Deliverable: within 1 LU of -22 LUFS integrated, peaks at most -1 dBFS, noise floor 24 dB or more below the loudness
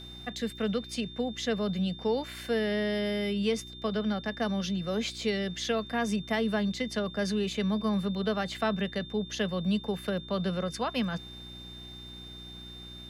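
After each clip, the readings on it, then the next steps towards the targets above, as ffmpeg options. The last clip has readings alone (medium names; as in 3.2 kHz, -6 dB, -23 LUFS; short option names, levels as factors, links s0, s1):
hum 60 Hz; highest harmonic 360 Hz; hum level -47 dBFS; steady tone 3.6 kHz; tone level -45 dBFS; loudness -31.0 LUFS; peak level -17.0 dBFS; loudness target -22.0 LUFS
-> -af "bandreject=f=60:t=h:w=4,bandreject=f=120:t=h:w=4,bandreject=f=180:t=h:w=4,bandreject=f=240:t=h:w=4,bandreject=f=300:t=h:w=4,bandreject=f=360:t=h:w=4"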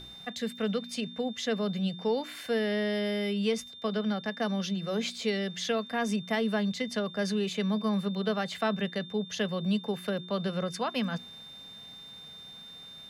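hum not found; steady tone 3.6 kHz; tone level -45 dBFS
-> -af "bandreject=f=3600:w=30"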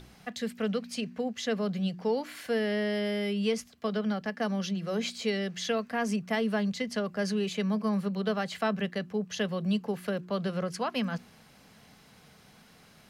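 steady tone not found; loudness -31.5 LUFS; peak level -17.5 dBFS; loudness target -22.0 LUFS
-> -af "volume=2.99"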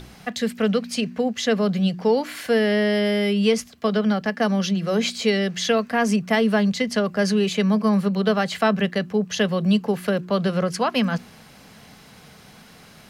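loudness -22.0 LUFS; peak level -8.0 dBFS; noise floor -48 dBFS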